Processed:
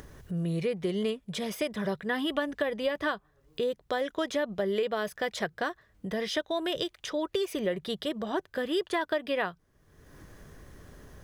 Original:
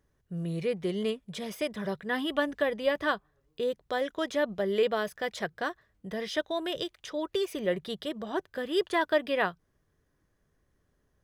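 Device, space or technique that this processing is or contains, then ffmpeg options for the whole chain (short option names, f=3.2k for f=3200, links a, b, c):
upward and downward compression: -af "acompressor=mode=upward:threshold=-36dB:ratio=2.5,acompressor=threshold=-29dB:ratio=6,volume=3.5dB"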